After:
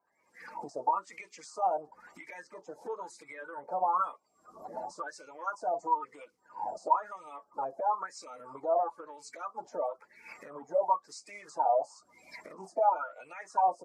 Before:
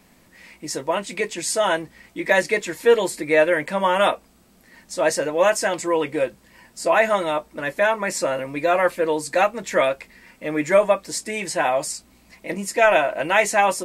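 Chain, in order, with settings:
spectral magnitudes quantised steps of 30 dB
camcorder AGC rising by 64 dB per second
drawn EQ curve 1,300 Hz 0 dB, 1,900 Hz −23 dB, 3,800 Hz −13 dB, 5,500 Hz +3 dB
LFO wah 1 Hz 720–2,500 Hz, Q 9.9
pitch shifter −1 semitone

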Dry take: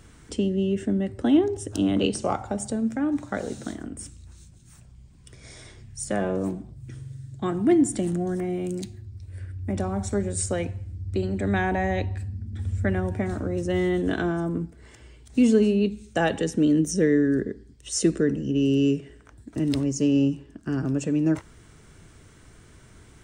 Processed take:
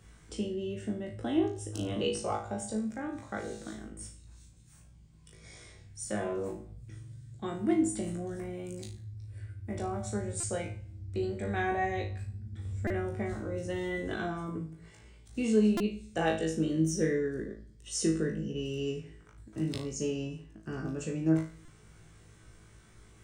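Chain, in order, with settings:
flutter between parallel walls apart 3.2 metres, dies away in 0.37 s
on a send at −12 dB: convolution reverb, pre-delay 3 ms
on the sum: mains hum 60 Hz, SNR 30 dB
parametric band 270 Hz −8 dB 0.22 octaves
buffer that repeats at 0:10.40/0:12.87/0:15.77/0:21.65, samples 128, times 10
level −9 dB

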